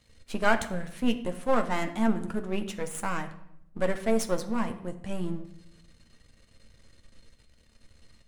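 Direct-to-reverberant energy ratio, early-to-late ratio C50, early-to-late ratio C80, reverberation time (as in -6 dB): 6.0 dB, 12.5 dB, 15.0 dB, 0.80 s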